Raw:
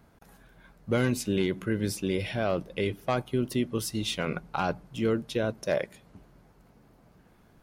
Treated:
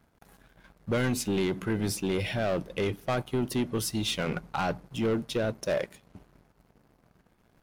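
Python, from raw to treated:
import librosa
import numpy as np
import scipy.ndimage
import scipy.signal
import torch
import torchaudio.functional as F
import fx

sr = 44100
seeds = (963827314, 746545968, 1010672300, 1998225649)

y = fx.leveller(x, sr, passes=2)
y = F.gain(torch.from_numpy(y), -5.0).numpy()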